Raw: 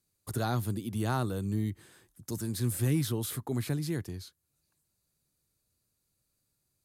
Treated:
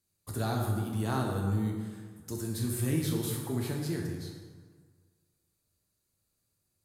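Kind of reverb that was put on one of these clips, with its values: plate-style reverb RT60 1.6 s, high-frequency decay 0.6×, DRR -0.5 dB; gain -3 dB

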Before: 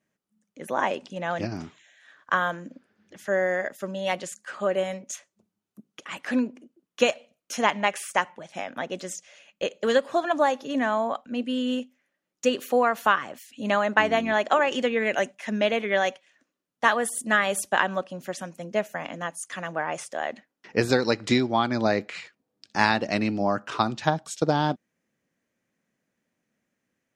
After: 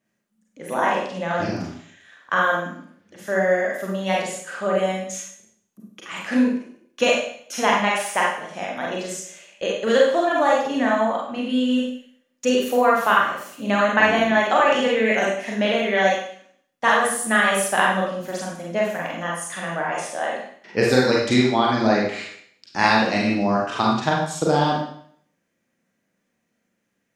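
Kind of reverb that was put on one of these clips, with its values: Schroeder reverb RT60 0.61 s, combs from 32 ms, DRR -3.5 dB

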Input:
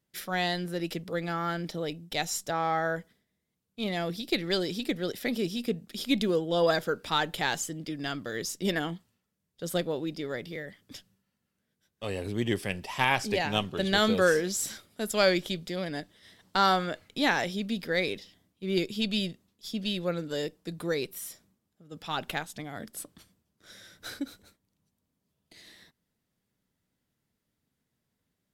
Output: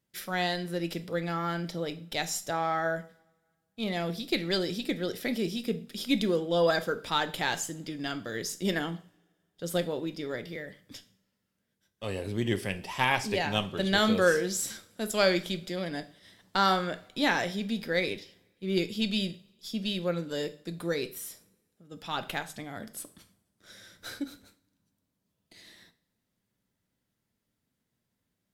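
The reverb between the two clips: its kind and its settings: two-slope reverb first 0.41 s, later 1.8 s, from -26 dB, DRR 9.5 dB; gain -1 dB

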